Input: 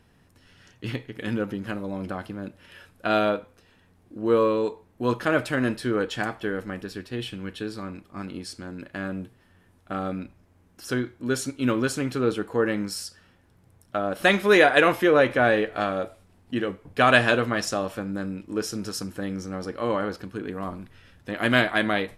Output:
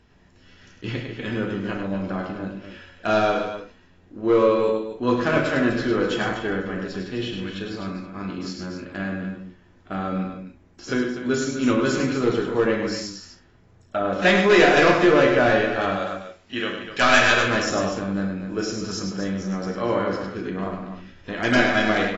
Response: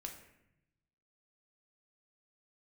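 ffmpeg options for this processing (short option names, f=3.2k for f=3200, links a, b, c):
-filter_complex "[0:a]asettb=1/sr,asplit=3[a][b][c];[a]atrim=end=15.964[d];[b]atrim=start=15.96:end=17.51,asetpts=PTS-STARTPTS,afade=t=in:d=0.004:c=qsin,afade=t=out:st=1.546:d=0.004:c=qsin,tiltshelf=f=970:g=-8[e];[c]atrim=start=17.506[f];[d][e]acrossfade=d=0.004:c1=hsin:c2=qsin[g];[g][f]acrossfade=d=0.004:c1=qsin:c2=hsin,asoftclip=type=hard:threshold=-14.5dB,aecho=1:1:102|247.8:0.501|0.316[h];[1:a]atrim=start_sample=2205,atrim=end_sample=3528[i];[h][i]afir=irnorm=-1:irlink=0,volume=5.5dB" -ar 22050 -c:a aac -b:a 24k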